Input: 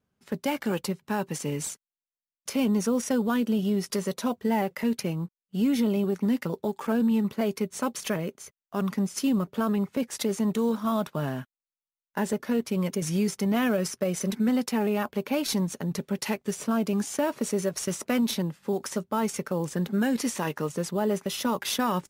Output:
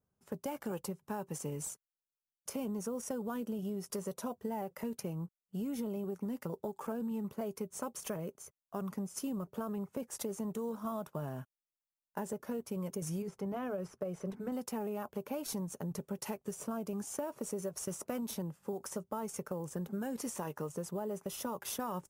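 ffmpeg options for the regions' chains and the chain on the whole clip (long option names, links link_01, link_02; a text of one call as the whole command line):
ffmpeg -i in.wav -filter_complex "[0:a]asettb=1/sr,asplit=3[link_01][link_02][link_03];[link_01]atrim=end=13.224[link_04];[link_02]atrim=start=13.22:end=14.52,asetpts=PTS-STARTPTS,afade=type=in:duration=0.004:curve=qsin,afade=type=out:start_time=1.296:duration=0.004:curve=qsin,bandreject=frequency=220:width=6,acrossover=split=4800[link_05][link_06];[link_06]acompressor=threshold=-46dB:ratio=4:attack=1:release=60[link_07];[link_05][link_07]amix=inputs=2:normalize=0,highshelf=frequency=3100:gain=-8.5[link_08];[link_03]atrim=start=14.516[link_09];[link_04][link_08]acrossfade=duration=0.004:curve1=hsin:curve2=qsin[link_10];[link_10][link_09]acrossfade=duration=0.004:curve1=qsin:curve2=hsin,equalizer=frequency=250:width_type=o:width=1:gain=-6,equalizer=frequency=2000:width_type=o:width=1:gain=-9,equalizer=frequency=4000:width_type=o:width=1:gain=-11,acompressor=threshold=-31dB:ratio=6,volume=-3.5dB" out.wav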